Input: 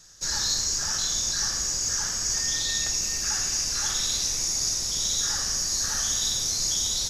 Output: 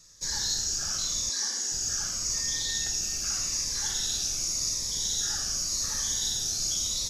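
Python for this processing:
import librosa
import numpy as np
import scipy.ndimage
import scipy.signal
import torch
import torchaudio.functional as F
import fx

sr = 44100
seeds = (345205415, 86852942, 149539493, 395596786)

y = fx.brickwall_bandpass(x, sr, low_hz=200.0, high_hz=12000.0, at=(1.29, 1.72))
y = fx.notch_cascade(y, sr, direction='falling', hz=0.86)
y = F.gain(torch.from_numpy(y), -3.0).numpy()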